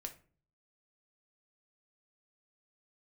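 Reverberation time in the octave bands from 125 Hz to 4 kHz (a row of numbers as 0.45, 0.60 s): 0.75, 0.60, 0.45, 0.35, 0.35, 0.25 s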